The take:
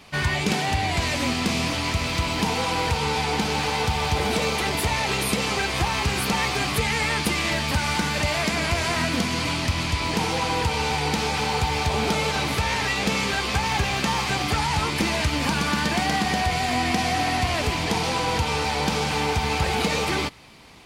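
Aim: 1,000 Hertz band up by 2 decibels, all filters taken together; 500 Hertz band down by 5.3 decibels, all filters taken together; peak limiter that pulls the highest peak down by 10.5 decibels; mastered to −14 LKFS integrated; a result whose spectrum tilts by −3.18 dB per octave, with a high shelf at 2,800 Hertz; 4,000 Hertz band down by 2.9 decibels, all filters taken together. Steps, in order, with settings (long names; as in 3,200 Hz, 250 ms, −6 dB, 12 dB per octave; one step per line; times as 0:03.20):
parametric band 500 Hz −8.5 dB
parametric band 1,000 Hz +5 dB
high-shelf EQ 2,800 Hz +6 dB
parametric band 4,000 Hz −9 dB
level +15 dB
brickwall limiter −6 dBFS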